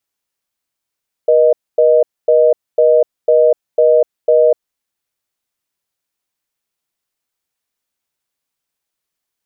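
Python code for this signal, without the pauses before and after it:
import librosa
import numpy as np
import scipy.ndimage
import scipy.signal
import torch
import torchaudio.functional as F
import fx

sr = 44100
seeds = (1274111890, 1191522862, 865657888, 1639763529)

y = fx.call_progress(sr, length_s=3.37, kind='reorder tone', level_db=-9.5)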